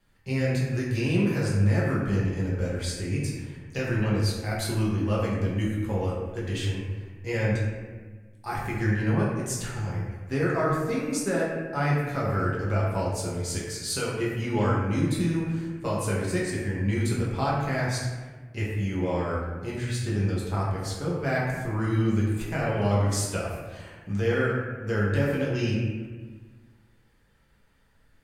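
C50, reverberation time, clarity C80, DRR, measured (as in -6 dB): 0.0 dB, 1.4 s, 2.5 dB, -6.5 dB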